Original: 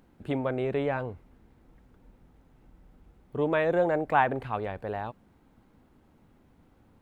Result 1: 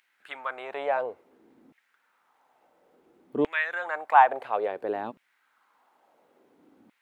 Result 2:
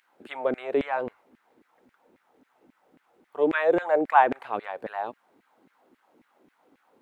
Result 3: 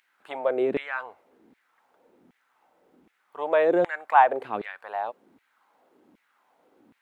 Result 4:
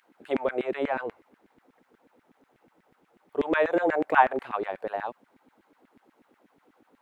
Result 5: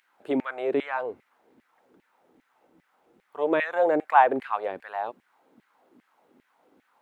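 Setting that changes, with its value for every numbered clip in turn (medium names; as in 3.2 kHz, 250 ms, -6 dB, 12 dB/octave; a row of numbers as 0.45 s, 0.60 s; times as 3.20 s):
LFO high-pass, rate: 0.58 Hz, 3.7 Hz, 1.3 Hz, 8.2 Hz, 2.5 Hz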